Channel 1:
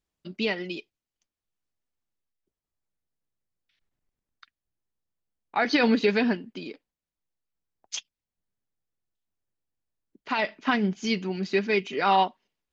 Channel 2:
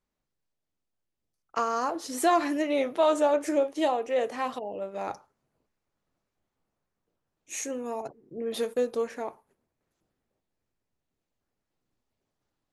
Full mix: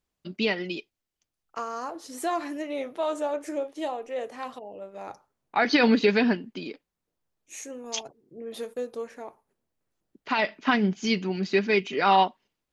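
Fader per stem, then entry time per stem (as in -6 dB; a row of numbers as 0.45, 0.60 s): +1.5, -5.5 dB; 0.00, 0.00 s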